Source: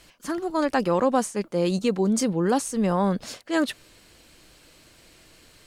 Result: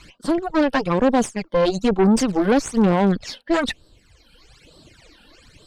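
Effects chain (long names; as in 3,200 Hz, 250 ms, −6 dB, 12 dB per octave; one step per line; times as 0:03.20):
reverb reduction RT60 1.5 s
in parallel at −3 dB: soft clipping −23.5 dBFS, distortion −10 dB
0:02.27–0:03.11: on the sum: surface crackle 570 per second −34 dBFS
all-pass phaser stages 12, 1.1 Hz, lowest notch 110–2,300 Hz
harmonic generator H 4 −17 dB, 5 −23 dB, 8 −22 dB, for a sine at −10.5 dBFS
high-frequency loss of the air 63 metres
level +3.5 dB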